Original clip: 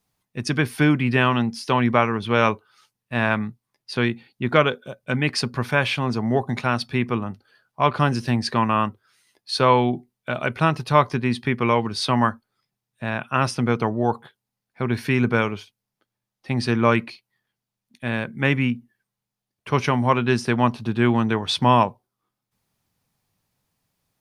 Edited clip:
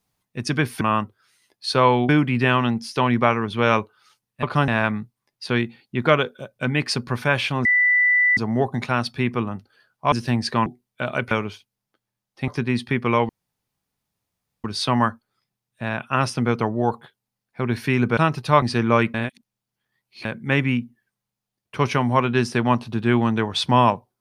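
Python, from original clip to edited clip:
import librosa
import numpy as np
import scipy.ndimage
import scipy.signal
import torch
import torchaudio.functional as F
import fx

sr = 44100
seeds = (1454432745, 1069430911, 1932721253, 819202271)

y = fx.edit(x, sr, fx.insert_tone(at_s=6.12, length_s=0.72, hz=1980.0, db=-14.0),
    fx.move(start_s=7.87, length_s=0.25, to_s=3.15),
    fx.move(start_s=8.66, length_s=1.28, to_s=0.81),
    fx.swap(start_s=10.59, length_s=0.45, other_s=15.38, other_length_s=1.17),
    fx.insert_room_tone(at_s=11.85, length_s=1.35),
    fx.reverse_span(start_s=17.07, length_s=1.11), tone=tone)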